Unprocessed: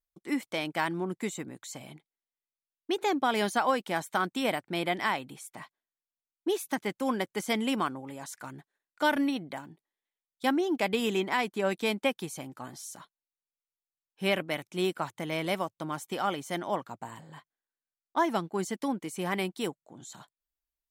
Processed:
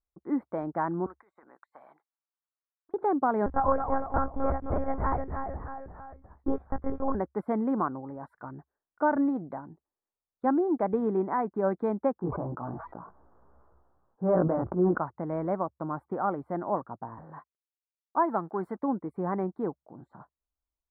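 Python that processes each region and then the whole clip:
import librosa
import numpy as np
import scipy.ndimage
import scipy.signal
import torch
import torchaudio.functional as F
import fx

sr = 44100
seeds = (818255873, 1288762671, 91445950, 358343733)

y = fx.chain(x, sr, fx.highpass(hz=1200.0, slope=12),
    fx.over_compress(threshold_db=-51.0, ratio=-1.0), at=(1.06, 2.94))
y = fx.chain(y, sr, fx.echo_pitch(ms=217, semitones=-1, count=3, db_per_echo=-6.0),
    fx.lpc_monotone(seeds[0], pitch_hz=270.0, order=10), at=(3.46, 7.15))
y = fx.chain(y, sr, fx.lowpass(hz=1400.0, slope=24),
    fx.doubler(ms=17.0, db=-2.0),
    fx.sustainer(db_per_s=25.0), at=(12.15, 14.98))
y = fx.chain(y, sr, fx.law_mismatch(coded='mu'),
    fx.highpass(hz=98.0, slope=12),
    fx.tilt_eq(slope=2.5), at=(17.18, 18.82))
y = scipy.signal.sosfilt(scipy.signal.cheby2(4, 40, 2600.0, 'lowpass', fs=sr, output='sos'), y)
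y = fx.peak_eq(y, sr, hz=68.0, db=14.0, octaves=0.39)
y = y * librosa.db_to_amplitude(2.0)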